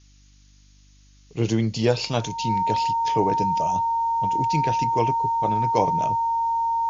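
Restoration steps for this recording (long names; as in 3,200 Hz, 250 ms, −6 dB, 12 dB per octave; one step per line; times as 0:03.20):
hum removal 49.6 Hz, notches 6
notch filter 920 Hz, Q 30
broadband denoise 16 dB, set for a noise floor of −53 dBFS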